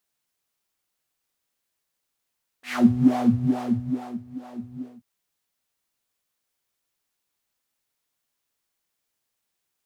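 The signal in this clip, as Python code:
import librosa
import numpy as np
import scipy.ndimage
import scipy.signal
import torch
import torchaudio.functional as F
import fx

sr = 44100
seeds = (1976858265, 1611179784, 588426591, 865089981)

y = fx.sub_patch_wobble(sr, seeds[0], note=59, wave='triangle', wave2='saw', interval_st=-12, level2_db=-15, sub_db=-15.0, noise_db=-3.0, kind='bandpass', cutoff_hz=110.0, q=3.5, env_oct=4.0, env_decay_s=0.18, env_sustain_pct=30, attack_ms=174.0, decay_s=1.39, sustain_db=-18.5, release_s=0.24, note_s=2.15, lfo_hz=2.3, wobble_oct=1.6)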